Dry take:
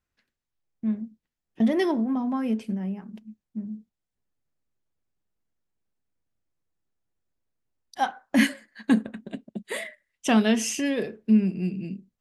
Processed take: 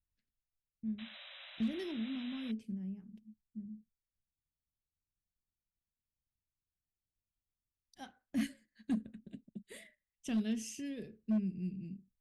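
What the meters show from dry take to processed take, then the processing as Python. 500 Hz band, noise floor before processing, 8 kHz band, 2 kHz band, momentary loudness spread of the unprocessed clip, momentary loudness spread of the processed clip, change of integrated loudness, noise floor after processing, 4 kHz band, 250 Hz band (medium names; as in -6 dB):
-19.5 dB, under -85 dBFS, -16.0 dB, -20.0 dB, 17 LU, 18 LU, -14.0 dB, under -85 dBFS, -13.5 dB, -13.5 dB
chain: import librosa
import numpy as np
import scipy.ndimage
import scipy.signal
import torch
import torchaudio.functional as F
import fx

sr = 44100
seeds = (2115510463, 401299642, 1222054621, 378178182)

y = fx.spec_paint(x, sr, seeds[0], shape='noise', start_s=0.98, length_s=1.54, low_hz=530.0, high_hz=4000.0, level_db=-32.0)
y = fx.tone_stack(y, sr, knobs='10-0-1')
y = np.clip(10.0 ** (32.0 / 20.0) * y, -1.0, 1.0) / 10.0 ** (32.0 / 20.0)
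y = y * librosa.db_to_amplitude(4.5)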